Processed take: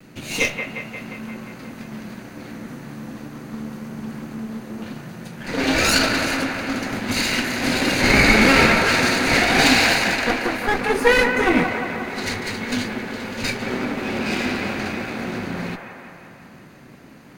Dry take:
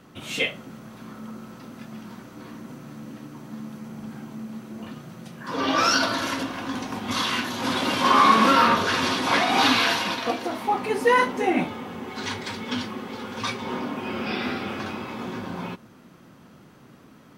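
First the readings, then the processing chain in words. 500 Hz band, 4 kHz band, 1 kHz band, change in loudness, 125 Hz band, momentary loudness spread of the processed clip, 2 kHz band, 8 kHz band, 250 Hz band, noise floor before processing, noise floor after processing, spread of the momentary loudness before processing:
+5.0 dB, +3.5 dB, −2.0 dB, +4.5 dB, +8.5 dB, 21 LU, +8.0 dB, +7.5 dB, +5.5 dB, −51 dBFS, −44 dBFS, 22 LU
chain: lower of the sound and its delayed copy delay 0.46 ms
pitch vibrato 0.31 Hz 17 cents
delay with a band-pass on its return 177 ms, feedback 67%, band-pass 1,100 Hz, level −4 dB
level +5.5 dB

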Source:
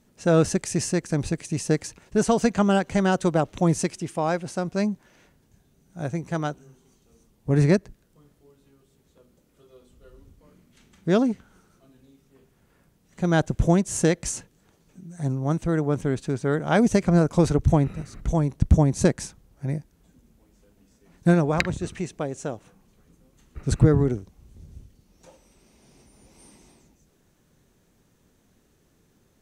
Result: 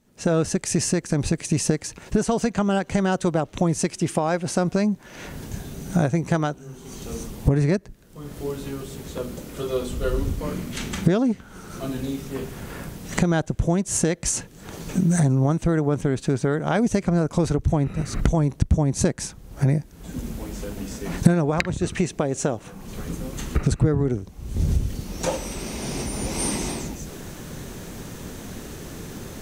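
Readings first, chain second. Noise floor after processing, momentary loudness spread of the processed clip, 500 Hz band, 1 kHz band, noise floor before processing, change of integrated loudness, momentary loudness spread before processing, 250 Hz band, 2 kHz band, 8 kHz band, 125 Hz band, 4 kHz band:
−46 dBFS, 15 LU, +0.5 dB, +0.5 dB, −64 dBFS, −0.5 dB, 13 LU, +1.0 dB, +1.0 dB, +5.5 dB, +2.0 dB, +4.0 dB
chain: camcorder AGC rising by 46 dB per second
level −3 dB

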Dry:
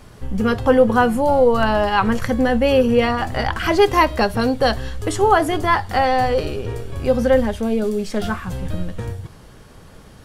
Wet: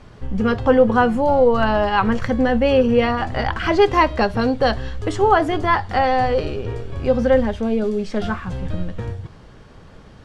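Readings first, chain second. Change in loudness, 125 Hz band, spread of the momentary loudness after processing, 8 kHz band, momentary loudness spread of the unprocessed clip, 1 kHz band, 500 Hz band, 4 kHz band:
−0.5 dB, 0.0 dB, 12 LU, can't be measured, 12 LU, −0.5 dB, −0.5 dB, −2.5 dB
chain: high-frequency loss of the air 100 metres

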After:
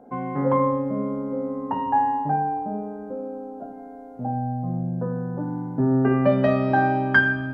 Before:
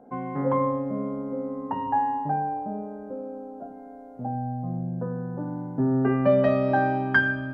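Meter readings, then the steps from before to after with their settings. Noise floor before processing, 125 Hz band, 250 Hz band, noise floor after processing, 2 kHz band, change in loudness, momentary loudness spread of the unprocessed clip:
−43 dBFS, +3.5 dB, +3.0 dB, −40 dBFS, +3.5 dB, +2.5 dB, 15 LU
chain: hum removal 53.45 Hz, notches 37
level +3.5 dB

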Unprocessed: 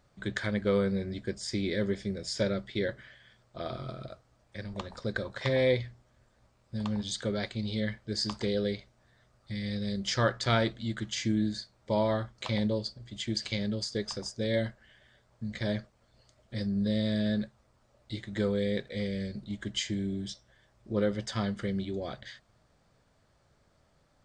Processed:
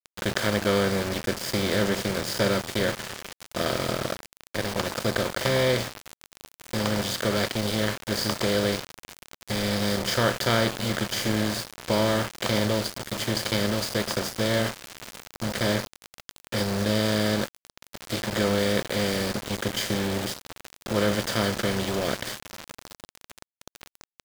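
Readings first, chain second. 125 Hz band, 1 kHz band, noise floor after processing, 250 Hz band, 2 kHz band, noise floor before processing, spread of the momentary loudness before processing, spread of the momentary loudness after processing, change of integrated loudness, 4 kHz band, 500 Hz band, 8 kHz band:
+4.5 dB, +9.5 dB, below −85 dBFS, +4.0 dB, +9.0 dB, −68 dBFS, 13 LU, 13 LU, +6.0 dB, +8.5 dB, +6.0 dB, +11.5 dB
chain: compressor on every frequency bin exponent 0.4
feedback delay with all-pass diffusion 1,233 ms, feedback 54%, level −14 dB
centre clipping without the shift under −26.5 dBFS

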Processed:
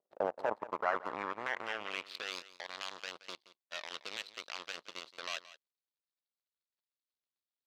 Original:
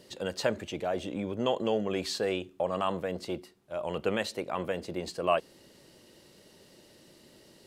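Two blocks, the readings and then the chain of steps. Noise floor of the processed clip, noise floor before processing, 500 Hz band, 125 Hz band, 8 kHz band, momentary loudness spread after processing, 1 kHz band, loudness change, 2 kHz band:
below −85 dBFS, −58 dBFS, −11.0 dB, −21.5 dB, −7.5 dB, 11 LU, −4.5 dB, −7.5 dB, −0.5 dB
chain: running median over 15 samples
in parallel at −2 dB: downward compressor, threshold −38 dBFS, peak gain reduction 15.5 dB
on the sum: brickwall limiter −25 dBFS, peak gain reduction 11.5 dB
power curve on the samples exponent 3
band-pass filter sweep 590 Hz → 3,900 Hz, 0:00.04–0:02.40
on a send: single-tap delay 174 ms −16.5 dB
on the sum: level +13 dB

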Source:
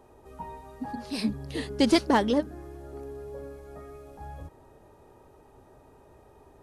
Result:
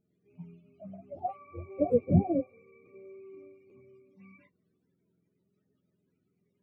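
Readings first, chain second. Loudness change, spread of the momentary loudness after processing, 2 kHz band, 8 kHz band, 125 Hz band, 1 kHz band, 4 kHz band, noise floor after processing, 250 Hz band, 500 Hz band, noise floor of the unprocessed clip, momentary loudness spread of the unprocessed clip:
−1.0 dB, 23 LU, below −20 dB, below −35 dB, +6.5 dB, −8.0 dB, below −40 dB, −78 dBFS, −5.5 dB, −2.0 dB, −56 dBFS, 21 LU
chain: frequency axis turned over on the octave scale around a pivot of 400 Hz
regular buffer underruns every 0.84 s, samples 512, repeat, from 0:00.33
every bin expanded away from the loudest bin 1.5 to 1

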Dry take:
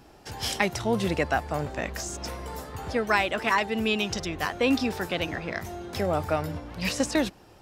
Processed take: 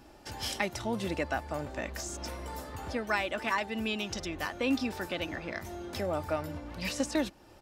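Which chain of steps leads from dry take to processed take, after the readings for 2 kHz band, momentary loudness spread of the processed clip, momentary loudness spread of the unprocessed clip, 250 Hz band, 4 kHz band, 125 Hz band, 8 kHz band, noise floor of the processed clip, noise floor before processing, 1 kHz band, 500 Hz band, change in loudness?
−6.5 dB, 9 LU, 11 LU, −5.5 dB, −6.0 dB, −7.5 dB, −5.5 dB, −55 dBFS, −53 dBFS, −7.0 dB, −6.5 dB, −6.0 dB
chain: in parallel at 0 dB: downward compressor, threshold −36 dBFS, peak gain reduction 17 dB
on the sum: comb filter 3.4 ms, depth 33%
level −8.5 dB

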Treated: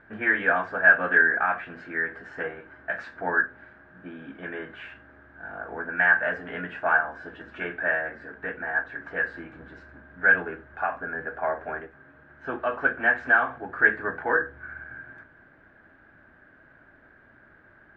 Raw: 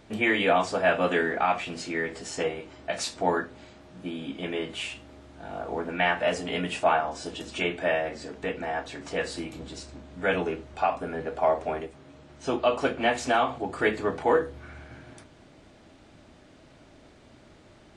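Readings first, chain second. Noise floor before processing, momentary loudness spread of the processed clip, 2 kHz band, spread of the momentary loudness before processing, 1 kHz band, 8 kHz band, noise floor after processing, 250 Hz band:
−54 dBFS, 20 LU, +9.5 dB, 15 LU, −2.0 dB, below −30 dB, −56 dBFS, −6.0 dB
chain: low-pass with resonance 1,600 Hz, resonance Q 15
level −6.5 dB

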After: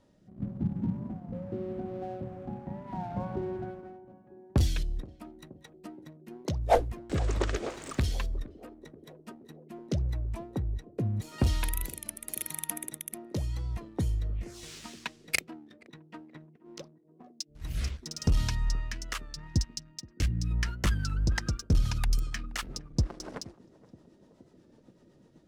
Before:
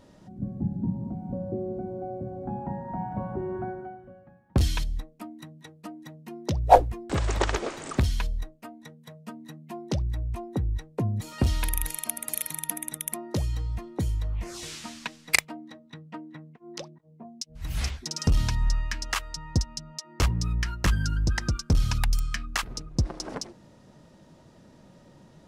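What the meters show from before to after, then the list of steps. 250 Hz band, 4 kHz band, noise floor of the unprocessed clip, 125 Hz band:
−3.0 dB, −5.0 dB, −55 dBFS, −3.0 dB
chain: rotating-speaker cabinet horn 0.85 Hz, later 8 Hz, at 0:20.38
leveller curve on the samples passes 1
feedback echo with a band-pass in the loop 474 ms, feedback 84%, band-pass 350 Hz, level −17 dB
gain on a spectral selection 0:19.48–0:20.51, 360–1,500 Hz −8 dB
wow of a warped record 33 1/3 rpm, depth 100 cents
level −5.5 dB

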